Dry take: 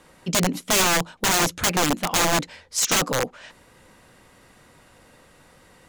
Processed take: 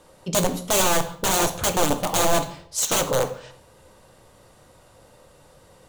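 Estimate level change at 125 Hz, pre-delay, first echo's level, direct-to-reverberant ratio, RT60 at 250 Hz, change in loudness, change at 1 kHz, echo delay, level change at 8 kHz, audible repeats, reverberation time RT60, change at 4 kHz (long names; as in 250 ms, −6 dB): −0.5 dB, 3 ms, no echo audible, 6.5 dB, 0.70 s, −0.5 dB, +0.5 dB, no echo audible, −0.5 dB, no echo audible, 0.60 s, −3.0 dB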